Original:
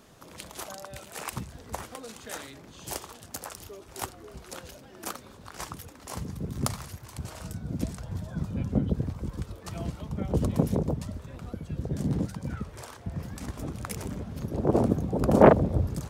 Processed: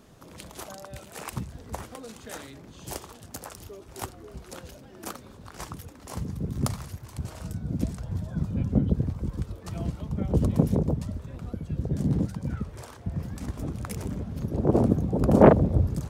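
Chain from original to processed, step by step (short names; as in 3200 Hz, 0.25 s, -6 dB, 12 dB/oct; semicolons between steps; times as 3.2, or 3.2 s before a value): low shelf 450 Hz +6.5 dB; gain -2.5 dB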